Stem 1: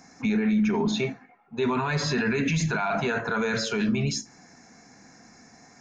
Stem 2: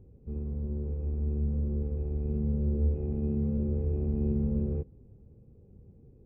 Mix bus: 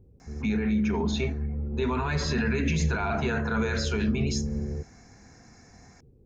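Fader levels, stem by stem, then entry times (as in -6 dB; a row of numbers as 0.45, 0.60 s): -3.0, -1.5 dB; 0.20, 0.00 s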